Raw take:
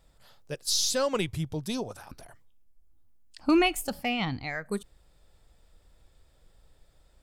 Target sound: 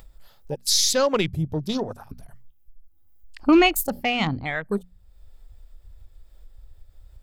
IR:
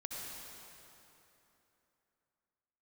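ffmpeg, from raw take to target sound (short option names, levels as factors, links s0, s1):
-filter_complex "[0:a]aexciter=amount=2.9:drive=5.5:freq=12000,afwtdn=0.00891,bandreject=f=60:t=h:w=6,bandreject=f=120:t=h:w=6,bandreject=f=180:t=h:w=6,bandreject=f=240:t=h:w=6,asplit=2[s0][s1];[s1]acompressor=mode=upward:threshold=0.02:ratio=2.5,volume=1.12[s2];[s0][s2]amix=inputs=2:normalize=0"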